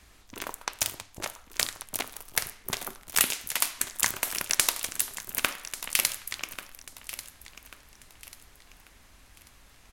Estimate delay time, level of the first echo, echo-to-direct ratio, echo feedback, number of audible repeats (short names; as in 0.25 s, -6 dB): 1.14 s, -14.0 dB, -13.5 dB, 35%, 3